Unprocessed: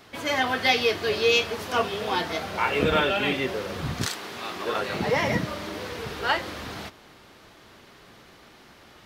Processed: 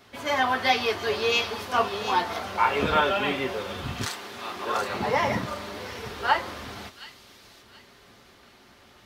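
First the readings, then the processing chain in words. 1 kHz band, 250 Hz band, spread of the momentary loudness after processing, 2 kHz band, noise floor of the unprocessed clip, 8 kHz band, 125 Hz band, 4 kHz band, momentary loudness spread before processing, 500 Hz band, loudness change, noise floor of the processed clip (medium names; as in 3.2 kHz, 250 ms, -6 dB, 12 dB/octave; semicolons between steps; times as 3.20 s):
+3.0 dB, -3.0 dB, 14 LU, -1.5 dB, -52 dBFS, -2.5 dB, -3.5 dB, -2.0 dB, 13 LU, -2.0 dB, -0.5 dB, -55 dBFS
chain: dynamic bell 980 Hz, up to +8 dB, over -40 dBFS, Q 1.3; comb of notches 160 Hz; on a send: feedback echo behind a high-pass 725 ms, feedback 32%, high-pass 3.6 kHz, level -6.5 dB; on the sum: trim -2 dB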